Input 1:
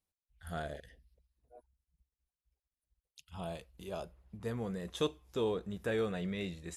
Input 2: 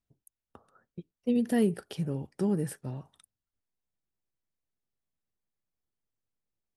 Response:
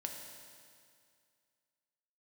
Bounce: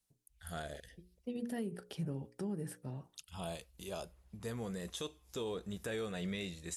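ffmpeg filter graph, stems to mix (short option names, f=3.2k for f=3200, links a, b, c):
-filter_complex "[0:a]equalizer=f=8.5k:t=o:w=2.3:g=10.5,volume=-1.5dB,asplit=2[a][b];[1:a]bandreject=f=60:t=h:w=6,bandreject=f=120:t=h:w=6,bandreject=f=180:t=h:w=6,bandreject=f=240:t=h:w=6,bandreject=f=300:t=h:w=6,bandreject=f=360:t=h:w=6,bandreject=f=420:t=h:w=6,bandreject=f=480:t=h:w=6,bandreject=f=540:t=h:w=6,volume=-5.5dB[c];[b]apad=whole_len=298417[d];[c][d]sidechaincompress=threshold=-47dB:ratio=8:attack=29:release=1010[e];[a][e]amix=inputs=2:normalize=0,alimiter=level_in=6.5dB:limit=-24dB:level=0:latency=1:release=262,volume=-6.5dB"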